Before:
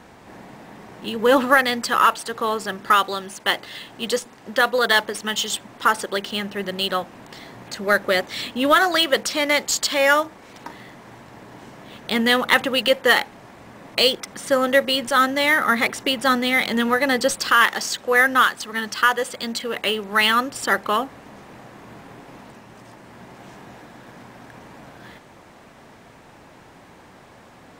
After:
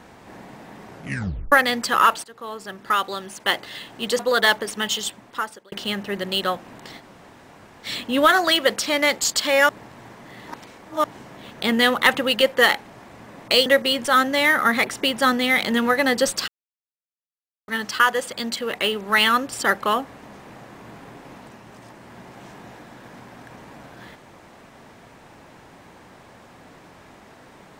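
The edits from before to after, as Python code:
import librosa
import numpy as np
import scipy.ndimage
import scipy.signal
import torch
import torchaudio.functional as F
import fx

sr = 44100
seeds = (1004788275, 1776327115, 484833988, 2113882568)

y = fx.edit(x, sr, fx.tape_stop(start_s=0.9, length_s=0.62),
    fx.fade_in_from(start_s=2.24, length_s=1.34, floor_db=-17.5),
    fx.cut(start_s=4.19, length_s=0.47),
    fx.fade_out_span(start_s=5.34, length_s=0.85),
    fx.room_tone_fill(start_s=7.47, length_s=0.85, crossfade_s=0.06),
    fx.reverse_span(start_s=10.16, length_s=1.35),
    fx.cut(start_s=14.13, length_s=0.56),
    fx.silence(start_s=17.51, length_s=1.2), tone=tone)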